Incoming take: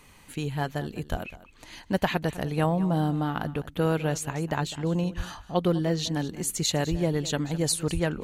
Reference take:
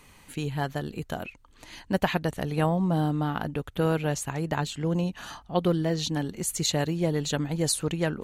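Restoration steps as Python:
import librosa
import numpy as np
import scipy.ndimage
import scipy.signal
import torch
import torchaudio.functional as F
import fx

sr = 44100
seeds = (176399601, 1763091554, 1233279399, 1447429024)

y = fx.fix_declip(x, sr, threshold_db=-11.5)
y = fx.fix_deplosive(y, sr, at_s=(1.1, 5.16, 6.9, 7.93))
y = fx.fix_echo_inverse(y, sr, delay_ms=203, level_db=-16.5)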